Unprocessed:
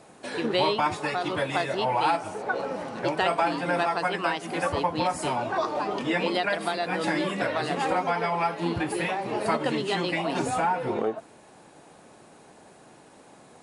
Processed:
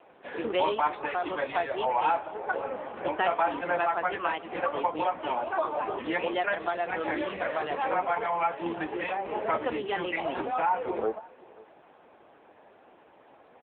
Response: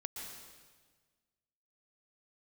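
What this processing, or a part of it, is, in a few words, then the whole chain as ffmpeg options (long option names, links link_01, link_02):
satellite phone: -af "highpass=340,lowpass=3300,aecho=1:1:528:0.0794" -ar 8000 -c:a libopencore_amrnb -b:a 6700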